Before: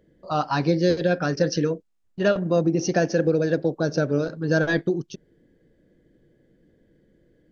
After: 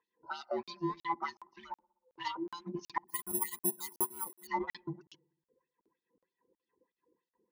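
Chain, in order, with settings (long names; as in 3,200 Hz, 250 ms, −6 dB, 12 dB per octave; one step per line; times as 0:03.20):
frequency inversion band by band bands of 500 Hz
reverb reduction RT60 0.84 s
0:01.28–0:02.28: parametric band 960 Hz +11.5 dB 1.3 octaves
in parallel at −11.5 dB: dead-zone distortion −34 dBFS
on the sum: auto-filter band-pass sine 3.2 Hz 390–4,600 Hz
gate with flip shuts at −15 dBFS, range −33 dB
on a send: delay with a low-pass on its return 62 ms, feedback 66%, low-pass 620 Hz, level −24 dB
0:03.08–0:04.47: on the sum: bad sample-rate conversion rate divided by 4×, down filtered, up zero stuff
regular buffer underruns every 0.37 s, samples 2,048, zero, from 0:00.63
level −6 dB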